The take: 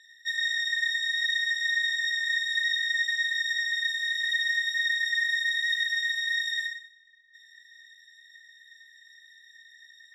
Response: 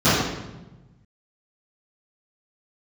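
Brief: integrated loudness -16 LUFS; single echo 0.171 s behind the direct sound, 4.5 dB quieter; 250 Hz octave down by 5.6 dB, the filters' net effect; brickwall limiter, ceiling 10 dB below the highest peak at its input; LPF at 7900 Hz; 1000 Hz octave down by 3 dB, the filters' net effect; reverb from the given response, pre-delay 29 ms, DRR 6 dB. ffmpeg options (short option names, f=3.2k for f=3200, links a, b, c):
-filter_complex "[0:a]lowpass=7.9k,equalizer=f=250:t=o:g=-8.5,equalizer=f=1k:t=o:g=-3.5,alimiter=level_in=3.5dB:limit=-24dB:level=0:latency=1,volume=-3.5dB,aecho=1:1:171:0.596,asplit=2[a][b];[1:a]atrim=start_sample=2205,adelay=29[c];[b][c]afir=irnorm=-1:irlink=0,volume=-29.5dB[d];[a][d]amix=inputs=2:normalize=0,volume=14dB"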